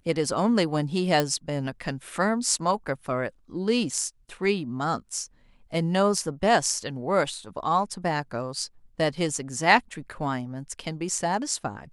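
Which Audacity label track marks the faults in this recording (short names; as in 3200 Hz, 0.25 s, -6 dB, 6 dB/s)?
1.200000	1.200000	pop
6.170000	6.170000	gap 3.1 ms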